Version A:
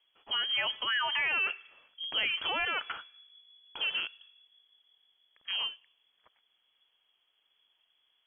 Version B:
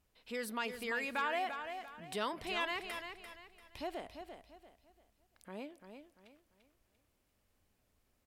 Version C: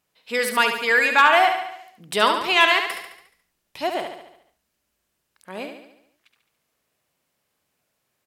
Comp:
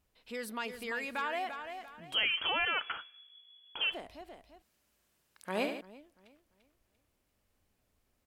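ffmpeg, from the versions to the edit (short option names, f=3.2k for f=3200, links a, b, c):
-filter_complex "[1:a]asplit=3[a][b][c];[a]atrim=end=2.16[d];[0:a]atrim=start=2.1:end=3.96[e];[b]atrim=start=3.9:end=4.622[f];[2:a]atrim=start=4.618:end=5.812[g];[c]atrim=start=5.808[h];[d][e]acrossfade=d=0.06:c1=tri:c2=tri[i];[i][f]acrossfade=d=0.06:c1=tri:c2=tri[j];[j][g]acrossfade=d=0.004:c1=hsin:c2=hsin[k];[k][h]acrossfade=d=0.004:c1=hsin:c2=hsin"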